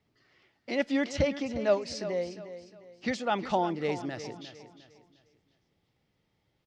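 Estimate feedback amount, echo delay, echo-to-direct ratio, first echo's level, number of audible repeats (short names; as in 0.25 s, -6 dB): 35%, 0.355 s, -12.0 dB, -12.5 dB, 3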